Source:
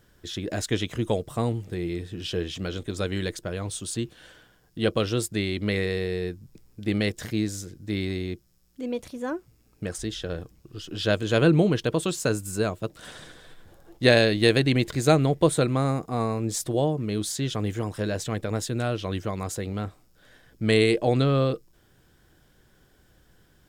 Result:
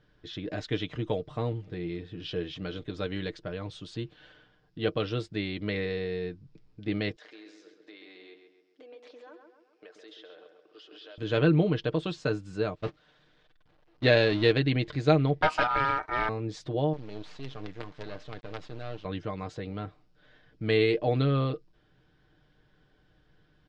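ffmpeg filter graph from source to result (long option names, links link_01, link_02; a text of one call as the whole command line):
ffmpeg -i in.wav -filter_complex "[0:a]asettb=1/sr,asplit=3[link_01][link_02][link_03];[link_01]atrim=end=7.164[link_04];[link_02]atrim=start=7.16:end=11.18,asetpts=PTS-STARTPTS,afade=type=in:duration=0.004:curve=qsin,afade=type=out:start_time=4.016:duration=0.004:curve=qsin,highpass=frequency=400:width=0.5412,highpass=frequency=400:width=1.3066,acompressor=threshold=-42dB:ratio=6:attack=3.2:release=140:knee=1:detection=peak,asplit=2[link_05][link_06];[link_06]adelay=133,lowpass=frequency=3200:poles=1,volume=-6dB,asplit=2[link_07][link_08];[link_08]adelay=133,lowpass=frequency=3200:poles=1,volume=0.49,asplit=2[link_09][link_10];[link_10]adelay=133,lowpass=frequency=3200:poles=1,volume=0.49,asplit=2[link_11][link_12];[link_12]adelay=133,lowpass=frequency=3200:poles=1,volume=0.49,asplit=2[link_13][link_14];[link_14]adelay=133,lowpass=frequency=3200:poles=1,volume=0.49,asplit=2[link_15][link_16];[link_16]adelay=133,lowpass=frequency=3200:poles=1,volume=0.49[link_17];[link_05][link_07][link_09][link_11][link_13][link_15][link_17]amix=inputs=7:normalize=0,atrim=end_sample=177282[link_18];[link_03]atrim=start=11.176[link_19];[link_04][link_18]acrossfade=duration=0.004:curve1=hsin:curve2=qsin[link_20];[link_20][link_19]acrossfade=duration=0.004:curve1=qsin:curve2=hsin,asettb=1/sr,asplit=3[link_21][link_22][link_23];[link_21]atrim=end=12.754[link_24];[link_22]atrim=start=12.75:end=14.52,asetpts=PTS-STARTPTS,afade=type=in:duration=0.004:curve=qsin,afade=type=out:start_time=1.766:duration=0.004:curve=qsin,aeval=exprs='val(0)+0.5*0.0422*sgn(val(0))':channel_layout=same,agate=range=-27dB:threshold=-29dB:ratio=16:release=100:detection=peak[link_25];[link_23]atrim=start=14.516[link_26];[link_24][link_25]acrossfade=duration=0.004:curve1=hsin:curve2=qsin[link_27];[link_27][link_26]acrossfade=duration=0.004:curve1=qsin:curve2=hsin,asettb=1/sr,asplit=3[link_28][link_29][link_30];[link_28]atrim=end=15.424[link_31];[link_29]atrim=start=15.42:end=16.29,asetpts=PTS-STARTPTS,afade=type=in:duration=0.004:curve=qsin,afade=type=out:start_time=0.866:duration=0.004:curve=qsin,acontrast=50,aeval=exprs='val(0)*sin(2*PI*1100*n/s)':channel_layout=same,aeval=exprs='clip(val(0),-1,0.119)':channel_layout=same[link_32];[link_30]atrim=start=16.286[link_33];[link_31][link_32]acrossfade=duration=0.004:curve1=hsin:curve2=qsin[link_34];[link_34][link_33]acrossfade=duration=0.004:curve1=qsin:curve2=hsin,asettb=1/sr,asplit=3[link_35][link_36][link_37];[link_35]atrim=end=16.934[link_38];[link_36]atrim=start=16.93:end=19.05,asetpts=PTS-STARTPTS,afade=type=in:duration=0.004:curve=qsin,afade=type=out:start_time=2.116:duration=0.004:curve=qsin,flanger=delay=5.3:depth=3.3:regen=84:speed=1.2:shape=triangular,acrusher=bits=5:dc=4:mix=0:aa=0.000001[link_39];[link_37]atrim=start=19.046[link_40];[link_38][link_39]acrossfade=duration=0.004:curve1=hsin:curve2=qsin[link_41];[link_41][link_40]acrossfade=duration=0.004:curve1=qsin:curve2=hsin,lowpass=frequency=4400:width=0.5412,lowpass=frequency=4400:width=1.3066,aecho=1:1:6.6:0.45,volume=-5.5dB" out.wav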